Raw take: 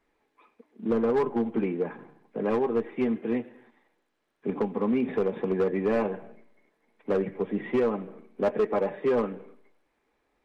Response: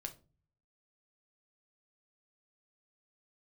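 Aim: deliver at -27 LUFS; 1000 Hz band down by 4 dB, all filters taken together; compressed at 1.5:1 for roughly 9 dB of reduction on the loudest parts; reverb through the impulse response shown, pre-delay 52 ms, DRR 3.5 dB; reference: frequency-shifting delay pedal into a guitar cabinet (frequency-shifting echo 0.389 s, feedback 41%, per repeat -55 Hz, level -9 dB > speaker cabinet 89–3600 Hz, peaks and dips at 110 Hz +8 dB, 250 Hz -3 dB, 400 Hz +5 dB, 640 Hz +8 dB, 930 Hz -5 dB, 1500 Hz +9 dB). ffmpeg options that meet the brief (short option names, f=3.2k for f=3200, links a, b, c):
-filter_complex "[0:a]equalizer=f=1k:t=o:g=-7,acompressor=threshold=-48dB:ratio=1.5,asplit=2[a][b];[1:a]atrim=start_sample=2205,adelay=52[c];[b][c]afir=irnorm=-1:irlink=0,volume=-0.5dB[d];[a][d]amix=inputs=2:normalize=0,asplit=6[e][f][g][h][i][j];[f]adelay=389,afreqshift=-55,volume=-9dB[k];[g]adelay=778,afreqshift=-110,volume=-16.7dB[l];[h]adelay=1167,afreqshift=-165,volume=-24.5dB[m];[i]adelay=1556,afreqshift=-220,volume=-32.2dB[n];[j]adelay=1945,afreqshift=-275,volume=-40dB[o];[e][k][l][m][n][o]amix=inputs=6:normalize=0,highpass=89,equalizer=f=110:t=q:w=4:g=8,equalizer=f=250:t=q:w=4:g=-3,equalizer=f=400:t=q:w=4:g=5,equalizer=f=640:t=q:w=4:g=8,equalizer=f=930:t=q:w=4:g=-5,equalizer=f=1.5k:t=q:w=4:g=9,lowpass=f=3.6k:w=0.5412,lowpass=f=3.6k:w=1.3066,volume=6dB"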